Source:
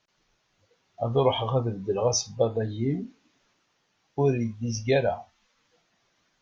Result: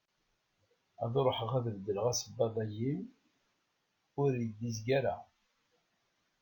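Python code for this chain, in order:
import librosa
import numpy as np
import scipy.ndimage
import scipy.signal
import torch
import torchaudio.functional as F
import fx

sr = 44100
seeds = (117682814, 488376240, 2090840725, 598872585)

y = np.interp(np.arange(len(x)), np.arange(len(x))[::2], x[::2])
y = y * 10.0 ** (-8.0 / 20.0)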